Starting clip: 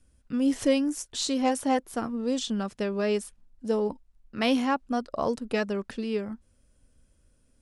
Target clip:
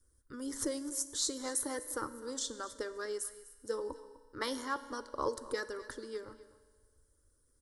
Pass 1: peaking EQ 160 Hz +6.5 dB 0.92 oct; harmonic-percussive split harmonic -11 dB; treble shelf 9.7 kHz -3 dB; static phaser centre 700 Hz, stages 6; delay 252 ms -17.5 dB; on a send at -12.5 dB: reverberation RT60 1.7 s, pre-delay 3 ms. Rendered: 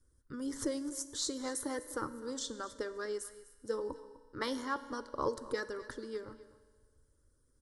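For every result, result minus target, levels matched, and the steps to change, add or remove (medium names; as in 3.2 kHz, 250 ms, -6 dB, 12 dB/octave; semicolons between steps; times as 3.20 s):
125 Hz band +5.0 dB; 8 kHz band -3.5 dB
change: peaking EQ 160 Hz -2 dB 0.92 oct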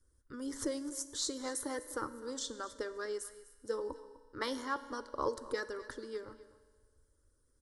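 8 kHz band -3.0 dB
change: treble shelf 9.7 kHz +9 dB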